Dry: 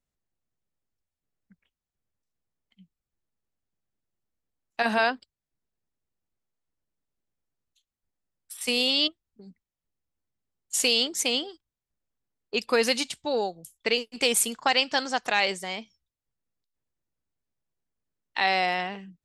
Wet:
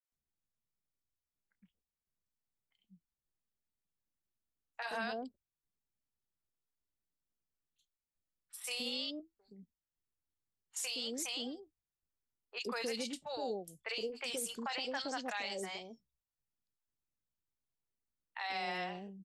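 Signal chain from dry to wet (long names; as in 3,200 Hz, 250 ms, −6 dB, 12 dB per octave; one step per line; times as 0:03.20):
flanger 0.18 Hz, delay 0.6 ms, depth 5.7 ms, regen −78%
three-band delay without the direct sound mids, highs, lows 30/120 ms, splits 600/2,500 Hz
brickwall limiter −25.5 dBFS, peak gain reduction 10.5 dB
level −3.5 dB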